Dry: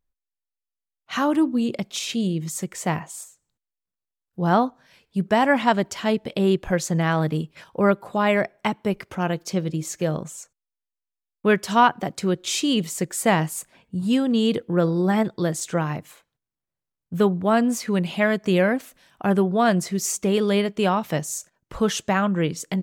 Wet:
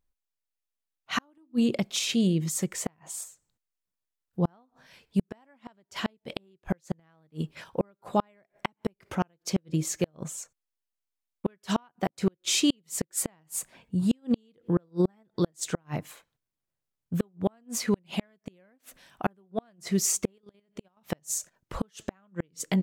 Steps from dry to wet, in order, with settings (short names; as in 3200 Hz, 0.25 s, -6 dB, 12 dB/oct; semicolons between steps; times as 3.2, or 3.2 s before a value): flipped gate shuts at -13 dBFS, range -41 dB; 20.38–20.97 level quantiser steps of 12 dB